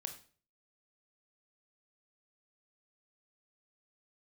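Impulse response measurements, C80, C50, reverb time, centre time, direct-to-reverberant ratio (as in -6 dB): 14.5 dB, 10.5 dB, 0.40 s, 12 ms, 5.5 dB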